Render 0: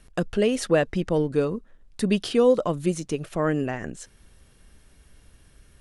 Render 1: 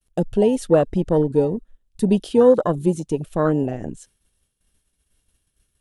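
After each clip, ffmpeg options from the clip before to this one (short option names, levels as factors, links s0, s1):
-af "agate=range=0.0224:threshold=0.00501:ratio=3:detection=peak,afwtdn=0.0501,aexciter=amount=2.3:drive=4.2:freq=2800,volume=1.78"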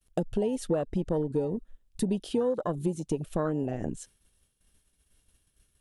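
-af "acompressor=threshold=0.0501:ratio=5"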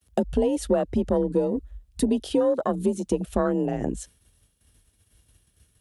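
-af "afreqshift=36,volume=1.88"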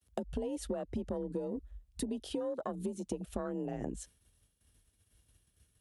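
-af "acompressor=threshold=0.0562:ratio=6,volume=0.398"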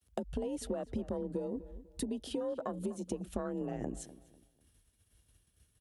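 -filter_complex "[0:a]asplit=2[s0][s1];[s1]adelay=248,lowpass=f=2200:p=1,volume=0.158,asplit=2[s2][s3];[s3]adelay=248,lowpass=f=2200:p=1,volume=0.32,asplit=2[s4][s5];[s5]adelay=248,lowpass=f=2200:p=1,volume=0.32[s6];[s0][s2][s4][s6]amix=inputs=4:normalize=0"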